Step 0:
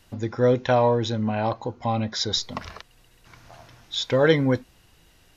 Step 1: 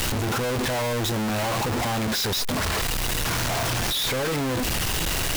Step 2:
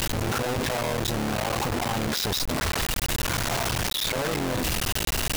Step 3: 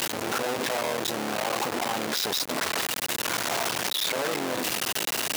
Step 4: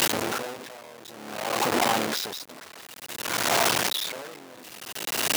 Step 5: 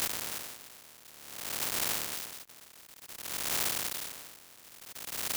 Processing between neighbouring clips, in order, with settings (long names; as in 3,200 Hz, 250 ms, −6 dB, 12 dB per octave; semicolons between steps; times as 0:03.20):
sign of each sample alone
sub-harmonics by changed cycles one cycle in 3, muted
high-pass filter 280 Hz 12 dB per octave
tremolo with a sine in dB 0.55 Hz, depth 23 dB; level +6 dB
compressing power law on the bin magnitudes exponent 0.13; level −8.5 dB